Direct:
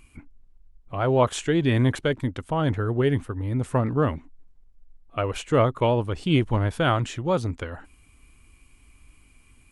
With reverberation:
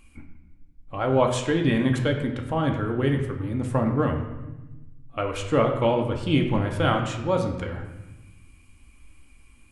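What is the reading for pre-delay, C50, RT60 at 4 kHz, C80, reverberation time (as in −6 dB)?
4 ms, 7.0 dB, 0.80 s, 9.0 dB, 1.1 s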